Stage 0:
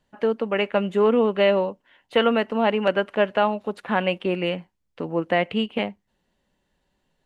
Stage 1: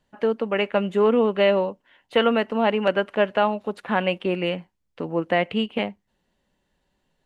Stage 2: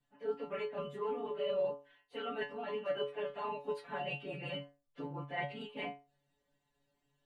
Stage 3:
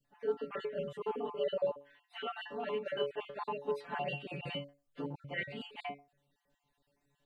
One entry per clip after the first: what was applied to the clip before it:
no processing that can be heard
random phases in long frames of 50 ms; reversed playback; downward compressor 6 to 1, threshold −27 dBFS, peak gain reduction 14 dB; reversed playback; stiff-string resonator 140 Hz, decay 0.33 s, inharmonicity 0.002; level +3.5 dB
time-frequency cells dropped at random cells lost 32%; level +3 dB

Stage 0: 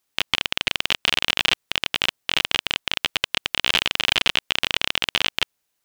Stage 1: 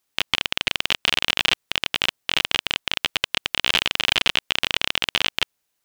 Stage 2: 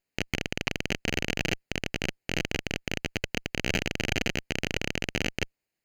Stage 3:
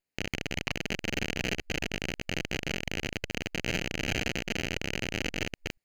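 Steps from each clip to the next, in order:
no processing that can be heard
lower of the sound and its delayed copy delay 0.43 ms; high-shelf EQ 3,900 Hz −11 dB; level −3 dB
delay that plays each chunk backwards 231 ms, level −2 dB; level −4 dB

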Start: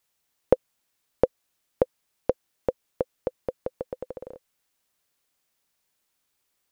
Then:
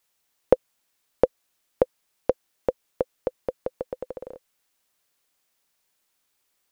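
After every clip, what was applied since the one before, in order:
parametric band 88 Hz −4.5 dB 2.9 octaves
level +2.5 dB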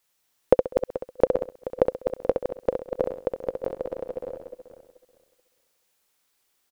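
feedback delay that plays each chunk backwards 216 ms, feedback 44%, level −7 dB
repeating echo 66 ms, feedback 30%, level −6 dB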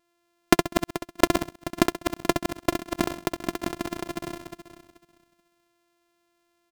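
samples sorted by size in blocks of 128 samples

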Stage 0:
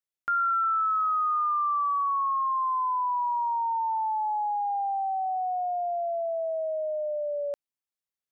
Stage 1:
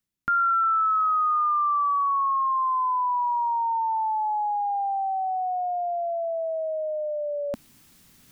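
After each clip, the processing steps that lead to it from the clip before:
low shelf with overshoot 350 Hz +11.5 dB, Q 1.5
reversed playback
upward compression, threshold −34 dBFS
reversed playback
level +4 dB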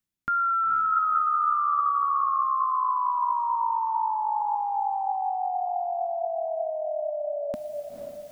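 feedback delay with all-pass diffusion 493 ms, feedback 42%, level −5 dB
level −2.5 dB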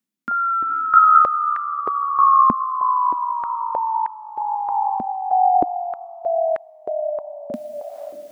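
high-pass on a step sequencer 3.2 Hz 230–1,800 Hz
level +1 dB

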